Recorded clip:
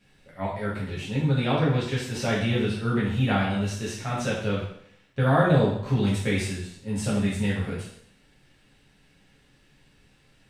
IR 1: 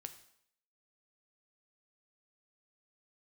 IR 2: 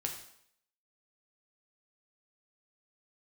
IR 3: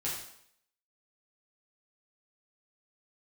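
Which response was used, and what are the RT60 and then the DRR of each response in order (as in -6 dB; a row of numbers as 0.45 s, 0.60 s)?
3; 0.70 s, 0.65 s, 0.65 s; 8.0 dB, 1.5 dB, -7.5 dB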